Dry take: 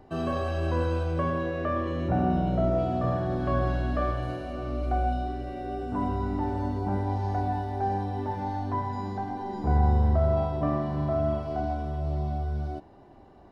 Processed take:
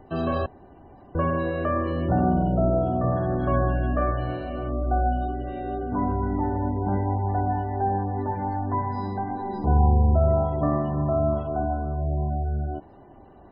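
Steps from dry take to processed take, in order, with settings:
0:00.46–0:01.15: fill with room tone
gate on every frequency bin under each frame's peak −30 dB strong
0:02.47–0:03.17: high-shelf EQ 2,800 Hz −11.5 dB
level +3.5 dB

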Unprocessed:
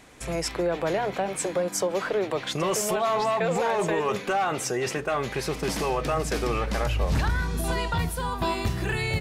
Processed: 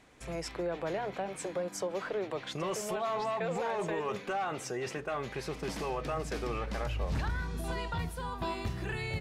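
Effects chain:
high-shelf EQ 7,500 Hz −8 dB
level −8.5 dB

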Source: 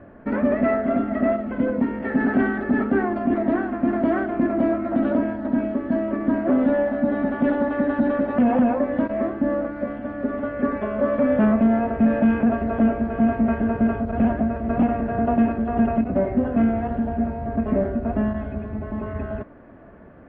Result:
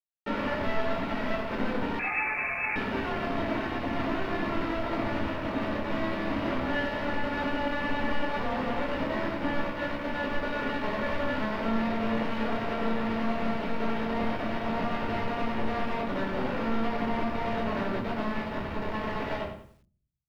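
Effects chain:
high-pass filter 800 Hz 6 dB per octave
brickwall limiter −25.5 dBFS, peak gain reduction 10 dB
downward compressor 12 to 1, threshold −36 dBFS, peak gain reduction 8 dB
bit reduction 6 bits
high-frequency loss of the air 330 metres
rectangular room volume 490 cubic metres, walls furnished, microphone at 4.5 metres
0:01.99–0:02.76: voice inversion scrambler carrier 2,600 Hz
feedback echo at a low word length 94 ms, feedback 35%, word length 10 bits, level −11 dB
level +1.5 dB

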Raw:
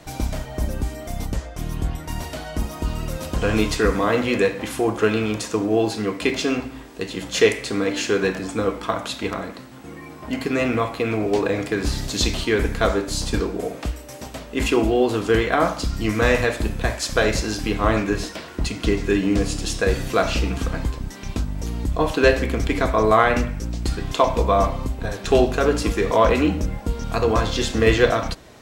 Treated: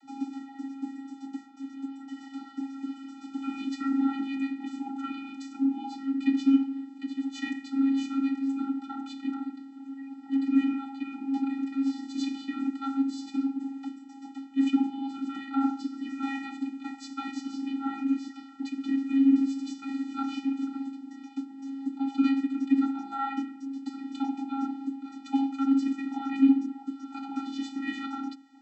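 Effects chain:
channel vocoder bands 32, square 272 Hz
level −6.5 dB

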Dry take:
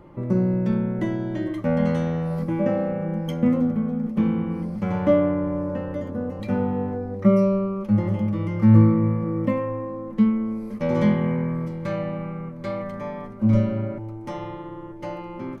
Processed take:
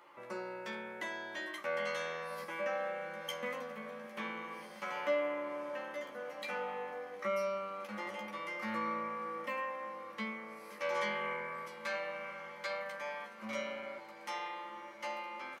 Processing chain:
high-pass filter 1,300 Hz 12 dB per octave
in parallel at +0.5 dB: brickwall limiter −32.5 dBFS, peak gain reduction 10.5 dB
on the sum: double-tracking delay 14 ms −4 dB
feedback delay with all-pass diffusion 1,471 ms, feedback 61%, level −15.5 dB
level −5 dB

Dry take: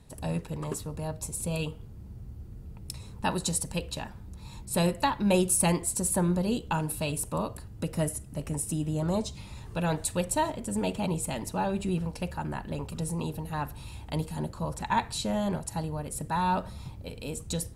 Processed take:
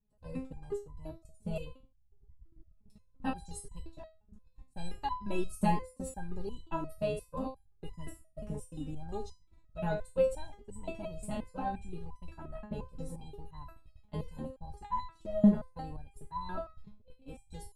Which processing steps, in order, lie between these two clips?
spectral tilt −3 dB per octave
noise gate −27 dBFS, range −26 dB
step-sequenced resonator 5.7 Hz 210–1,000 Hz
level +7 dB

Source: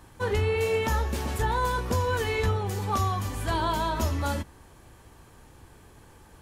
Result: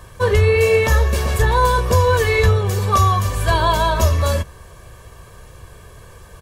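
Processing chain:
comb filter 1.8 ms, depth 71%
level +8.5 dB

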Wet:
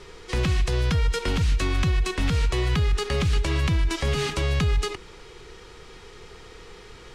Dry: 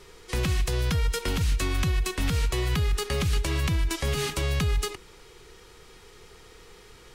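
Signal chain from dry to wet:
in parallel at 0 dB: brickwall limiter −26 dBFS, peak gain reduction 10 dB
on the sum: high-frequency loss of the air 60 metres

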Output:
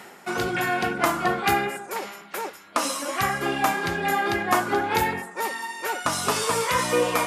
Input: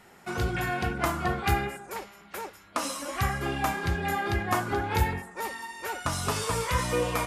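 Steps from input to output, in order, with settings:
high-pass filter 220 Hz 12 dB per octave
reversed playback
upward compression, threshold −35 dBFS
reversed playback
level +6 dB

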